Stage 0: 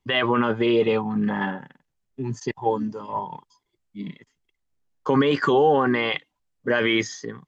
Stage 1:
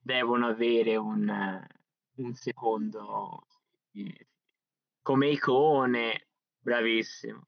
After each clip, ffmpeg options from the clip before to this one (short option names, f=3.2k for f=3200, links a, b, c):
-af "afftfilt=real='re*between(b*sr/4096,120,6200)':imag='im*between(b*sr/4096,120,6200)':win_size=4096:overlap=0.75,volume=-5.5dB"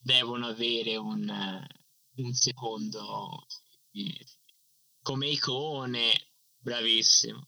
-af "equalizer=f=120:t=o:w=0.72:g=15,acompressor=threshold=-30dB:ratio=6,aexciter=amount=11.4:drive=9.4:freq=3.2k,volume=-1dB"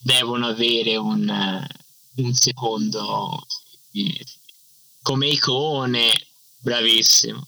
-filter_complex "[0:a]asplit=2[a][b];[b]acompressor=threshold=-35dB:ratio=5,volume=2dB[c];[a][c]amix=inputs=2:normalize=0,aeval=exprs='0.2*(abs(mod(val(0)/0.2+3,4)-2)-1)':c=same,volume=7dB"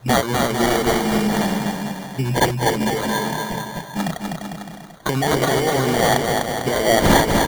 -filter_complex "[0:a]acrusher=samples=17:mix=1:aa=0.000001,asplit=2[a][b];[b]aecho=0:1:250|450|610|738|840.4:0.631|0.398|0.251|0.158|0.1[c];[a][c]amix=inputs=2:normalize=0"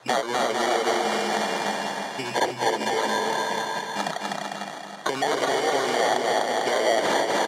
-filter_complex "[0:a]acrossover=split=800|3200[a][b][c];[a]acompressor=threshold=-21dB:ratio=4[d];[b]acompressor=threshold=-31dB:ratio=4[e];[c]acompressor=threshold=-33dB:ratio=4[f];[d][e][f]amix=inputs=3:normalize=0,highpass=470,lowpass=7.3k,aecho=1:1:315|630|945|1260|1575|1890:0.376|0.184|0.0902|0.0442|0.0217|0.0106,volume=2.5dB"